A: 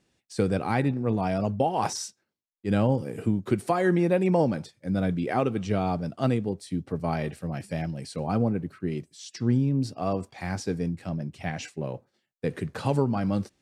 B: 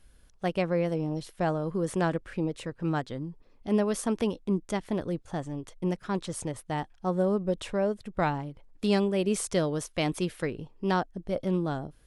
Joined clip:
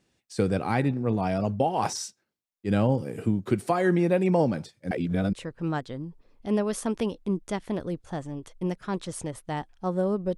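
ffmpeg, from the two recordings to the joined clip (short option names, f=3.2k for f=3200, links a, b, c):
-filter_complex "[0:a]apad=whole_dur=10.37,atrim=end=10.37,asplit=2[a][b];[a]atrim=end=4.912[c];[b]atrim=start=4.908:end=5.332,asetpts=PTS-STARTPTS,areverse[d];[1:a]atrim=start=2.538:end=7.58[e];[c][d]acrossfade=d=0.004:c1=hsin:c2=hsin[f];[f][e]acrossfade=d=0.004:c1=hsin:c2=hsin"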